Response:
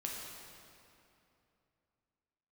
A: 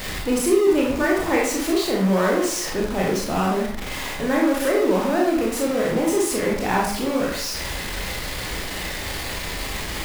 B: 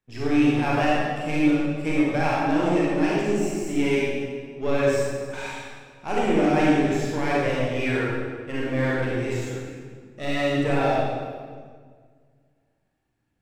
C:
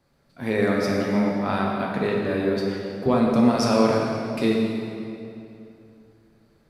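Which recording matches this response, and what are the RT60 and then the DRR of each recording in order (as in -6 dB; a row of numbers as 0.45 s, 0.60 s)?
C; 0.60 s, 1.8 s, 2.8 s; -3.0 dB, -7.0 dB, -2.5 dB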